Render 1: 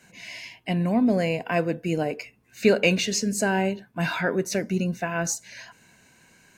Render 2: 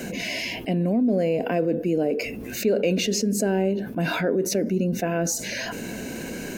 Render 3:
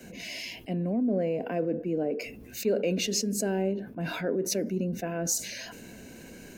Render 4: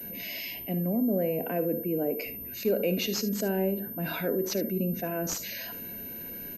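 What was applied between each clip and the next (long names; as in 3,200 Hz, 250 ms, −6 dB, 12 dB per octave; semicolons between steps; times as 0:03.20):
octave-band graphic EQ 125/250/500/1,000/2,000/4,000/8,000 Hz −8/+6/+6/−11/−6/−5/−8 dB; envelope flattener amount 70%; level −8 dB
multiband upward and downward expander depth 70%; level −6 dB
ambience of single reflections 56 ms −15.5 dB, 74 ms −15.5 dB; switching amplifier with a slow clock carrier 13,000 Hz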